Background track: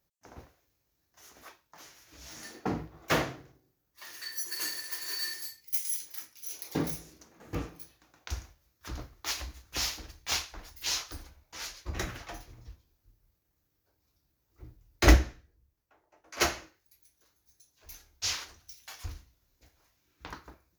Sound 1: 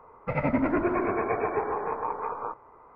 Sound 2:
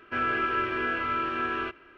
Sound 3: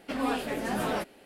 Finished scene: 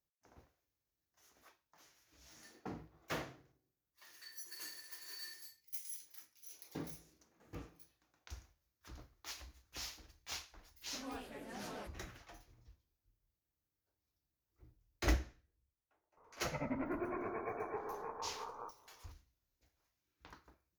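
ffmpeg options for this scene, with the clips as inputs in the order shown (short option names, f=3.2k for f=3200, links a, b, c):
-filter_complex "[0:a]volume=-14dB[a];[3:a]atrim=end=1.25,asetpts=PTS-STARTPTS,volume=-17.5dB,afade=t=in:d=0.004:c=hsin,afade=t=out:st=1.246:d=0.004:c=hsin,adelay=10840[b];[1:a]atrim=end=2.95,asetpts=PTS-STARTPTS,volume=-14.5dB,afade=t=in:d=0.004:c=hsin,afade=t=out:st=2.946:d=0.004:c=hsin,adelay=16170[c];[a][b][c]amix=inputs=3:normalize=0"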